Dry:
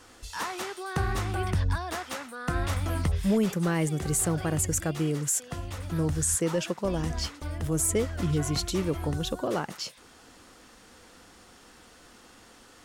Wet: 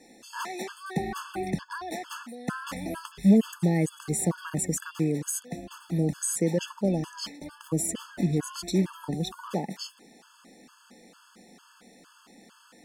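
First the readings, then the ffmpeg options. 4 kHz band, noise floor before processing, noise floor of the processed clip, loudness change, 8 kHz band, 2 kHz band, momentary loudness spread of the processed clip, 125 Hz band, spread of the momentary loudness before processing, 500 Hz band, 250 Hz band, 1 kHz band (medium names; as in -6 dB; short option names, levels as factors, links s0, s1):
-3.5 dB, -54 dBFS, -58 dBFS, -0.5 dB, -3.5 dB, -3.0 dB, 12 LU, -2.0 dB, 10 LU, -1.0 dB, +3.0 dB, -2.5 dB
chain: -af "lowshelf=f=130:t=q:w=3:g=-13,afftfilt=real='re*gt(sin(2*PI*2.2*pts/sr)*(1-2*mod(floor(b*sr/1024/870),2)),0)':imag='im*gt(sin(2*PI*2.2*pts/sr)*(1-2*mod(floor(b*sr/1024/870),2)),0)':win_size=1024:overlap=0.75"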